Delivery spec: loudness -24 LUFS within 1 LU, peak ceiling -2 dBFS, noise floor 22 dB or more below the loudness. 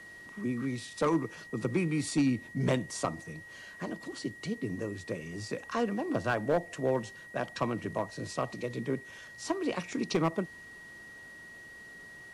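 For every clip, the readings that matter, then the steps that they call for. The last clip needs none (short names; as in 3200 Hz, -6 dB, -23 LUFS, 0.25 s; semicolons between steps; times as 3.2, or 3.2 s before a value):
clipped 0.3%; flat tops at -20.5 dBFS; steady tone 1900 Hz; tone level -47 dBFS; loudness -33.5 LUFS; peak -20.5 dBFS; loudness target -24.0 LUFS
-> clip repair -20.5 dBFS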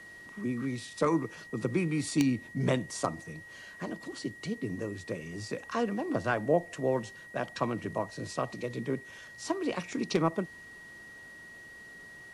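clipped 0.0%; steady tone 1900 Hz; tone level -47 dBFS
-> notch 1900 Hz, Q 30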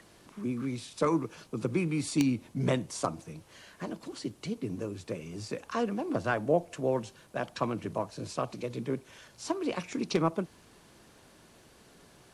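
steady tone none; loudness -33.0 LUFS; peak -11.5 dBFS; loudness target -24.0 LUFS
-> gain +9 dB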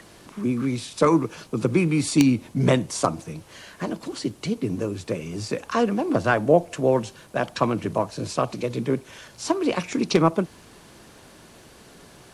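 loudness -24.0 LUFS; peak -2.5 dBFS; noise floor -50 dBFS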